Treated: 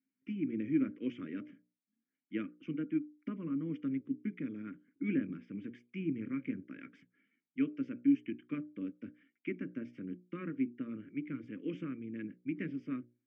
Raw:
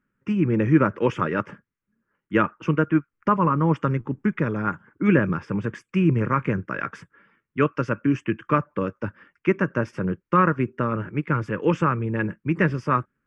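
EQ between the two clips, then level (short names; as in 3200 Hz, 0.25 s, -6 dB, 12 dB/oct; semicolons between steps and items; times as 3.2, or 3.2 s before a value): notches 60/120/180/240/300/360/420/480/540/600 Hz; dynamic EQ 2100 Hz, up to -3 dB, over -37 dBFS, Q 0.71; vowel filter i; -3.0 dB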